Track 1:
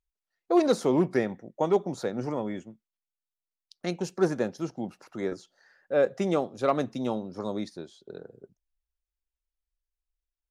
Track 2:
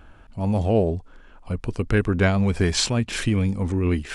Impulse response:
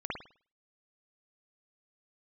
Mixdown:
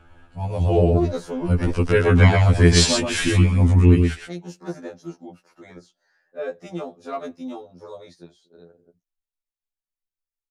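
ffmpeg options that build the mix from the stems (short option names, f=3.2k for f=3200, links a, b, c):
-filter_complex "[0:a]adelay=450,volume=-3dB[a];[1:a]dynaudnorm=f=340:g=5:m=11.5dB,volume=-0.5dB,asplit=2[b][c];[c]volume=-4.5dB,aecho=0:1:121:1[d];[a][b][d]amix=inputs=3:normalize=0,afftfilt=real='re*2*eq(mod(b,4),0)':imag='im*2*eq(mod(b,4),0)':win_size=2048:overlap=0.75"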